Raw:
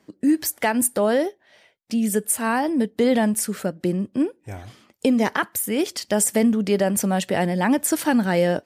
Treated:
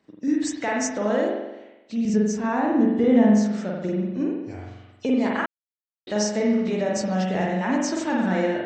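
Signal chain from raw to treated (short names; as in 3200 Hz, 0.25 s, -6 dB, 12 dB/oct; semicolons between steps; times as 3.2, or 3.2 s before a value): nonlinear frequency compression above 2600 Hz 1.5:1; 2.05–3.46 tilt -2.5 dB/oct; spring tank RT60 1 s, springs 43 ms, chirp 75 ms, DRR -2.5 dB; 5.46–6.07 mute; gain -7 dB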